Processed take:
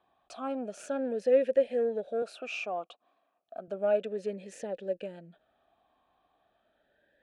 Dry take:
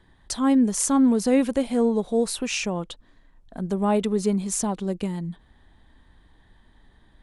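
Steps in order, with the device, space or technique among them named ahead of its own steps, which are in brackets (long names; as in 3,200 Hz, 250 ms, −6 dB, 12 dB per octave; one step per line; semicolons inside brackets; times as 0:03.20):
talk box (tube saturation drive 15 dB, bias 0.3; formant filter swept between two vowels a-e 0.33 Hz)
0:02.22–0:03.68: high-pass filter 220 Hz 12 dB per octave
level +5.5 dB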